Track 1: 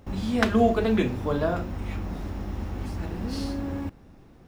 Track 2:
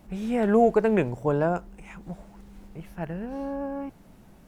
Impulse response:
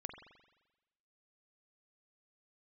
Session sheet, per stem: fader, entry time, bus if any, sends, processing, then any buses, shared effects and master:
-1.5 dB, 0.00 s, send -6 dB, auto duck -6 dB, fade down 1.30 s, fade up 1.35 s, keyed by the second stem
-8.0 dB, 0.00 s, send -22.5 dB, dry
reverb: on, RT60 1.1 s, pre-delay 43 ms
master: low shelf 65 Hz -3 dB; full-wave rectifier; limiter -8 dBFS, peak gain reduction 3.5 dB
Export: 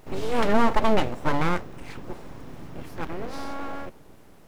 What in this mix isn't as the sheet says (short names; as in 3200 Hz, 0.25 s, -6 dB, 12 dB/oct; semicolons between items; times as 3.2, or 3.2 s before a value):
stem 2 -8.0 dB -> +3.0 dB; reverb return -7.5 dB